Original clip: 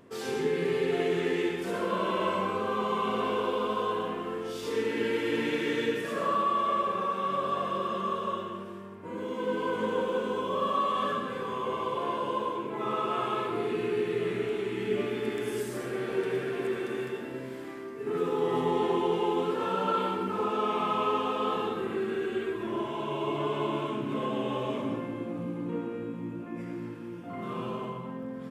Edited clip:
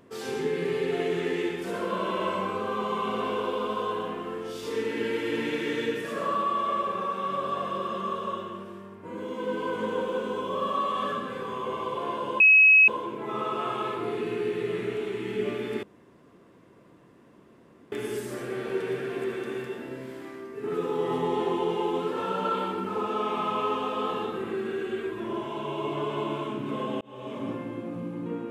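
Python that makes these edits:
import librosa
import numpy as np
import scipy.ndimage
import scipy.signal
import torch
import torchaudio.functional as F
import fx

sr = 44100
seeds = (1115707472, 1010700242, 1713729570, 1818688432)

y = fx.edit(x, sr, fx.insert_tone(at_s=12.4, length_s=0.48, hz=2560.0, db=-12.5),
    fx.insert_room_tone(at_s=15.35, length_s=2.09),
    fx.fade_in_span(start_s=24.44, length_s=0.49), tone=tone)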